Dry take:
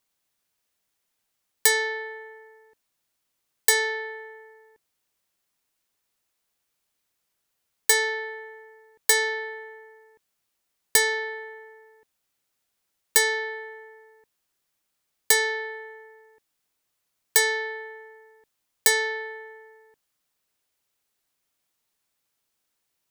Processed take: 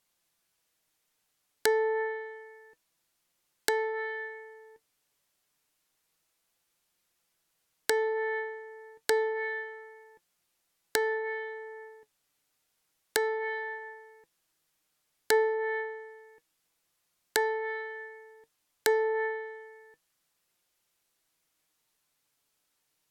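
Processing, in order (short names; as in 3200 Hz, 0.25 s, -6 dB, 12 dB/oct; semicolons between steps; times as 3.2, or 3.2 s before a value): flange 0.29 Hz, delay 5.6 ms, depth 1.4 ms, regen +62%; treble ducked by the level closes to 870 Hz, closed at -27.5 dBFS; gain +6 dB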